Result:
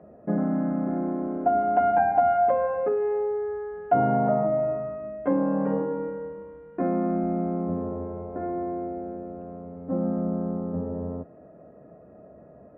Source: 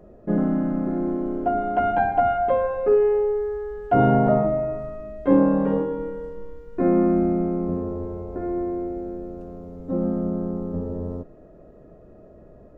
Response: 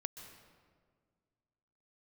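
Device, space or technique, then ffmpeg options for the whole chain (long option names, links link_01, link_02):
bass amplifier: -af "acompressor=threshold=-21dB:ratio=3,highpass=frequency=85:width=0.5412,highpass=frequency=85:width=1.3066,equalizer=frequency=110:width_type=q:width=4:gain=-7,equalizer=frequency=370:width_type=q:width=4:gain=-6,equalizer=frequency=720:width_type=q:width=4:gain=4,lowpass=frequency=2300:width=0.5412,lowpass=frequency=2300:width=1.3066"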